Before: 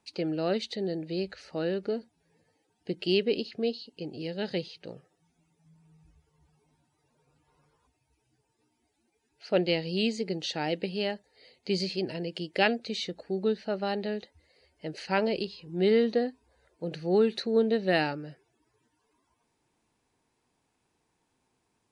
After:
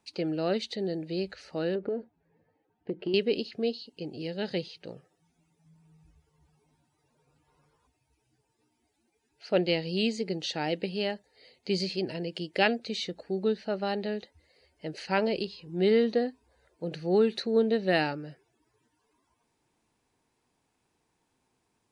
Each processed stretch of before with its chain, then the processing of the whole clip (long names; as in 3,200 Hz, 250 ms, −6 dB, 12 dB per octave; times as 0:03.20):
0:01.75–0:03.14: low-pass filter 1,700 Hz + dynamic equaliser 450 Hz, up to +7 dB, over −42 dBFS, Q 0.77 + downward compressor 10 to 1, threshold −27 dBFS
whole clip: no processing